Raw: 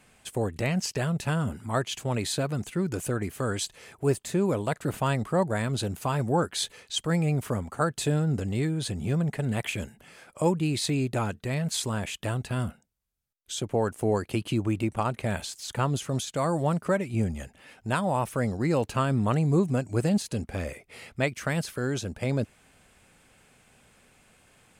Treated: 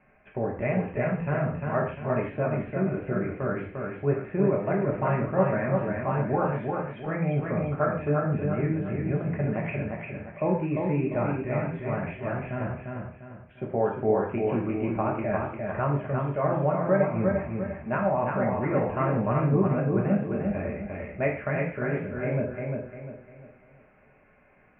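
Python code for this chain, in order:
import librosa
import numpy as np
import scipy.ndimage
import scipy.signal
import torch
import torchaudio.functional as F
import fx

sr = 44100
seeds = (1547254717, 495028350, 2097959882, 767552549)

y = scipy.signal.sosfilt(scipy.signal.butter(12, 2500.0, 'lowpass', fs=sr, output='sos'), x)
y = fx.peak_eq(y, sr, hz=620.0, db=6.5, octaves=0.31)
y = fx.echo_feedback(y, sr, ms=349, feedback_pct=37, wet_db=-4)
y = fx.rev_gated(y, sr, seeds[0], gate_ms=180, shape='falling', drr_db=-1.0)
y = F.gain(torch.from_numpy(y), -4.5).numpy()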